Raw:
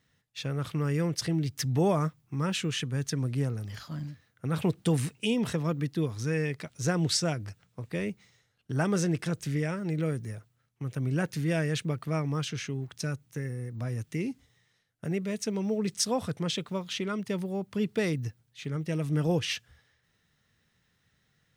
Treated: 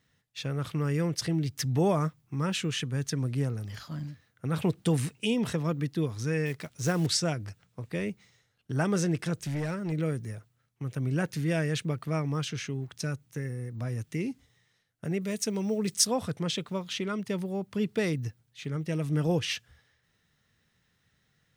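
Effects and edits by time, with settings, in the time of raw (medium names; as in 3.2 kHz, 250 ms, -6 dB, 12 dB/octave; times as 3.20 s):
6.46–7.07 s: block-companded coder 5-bit
9.45–9.92 s: hard clipper -27.5 dBFS
15.21–16.07 s: treble shelf 6.6 kHz +10 dB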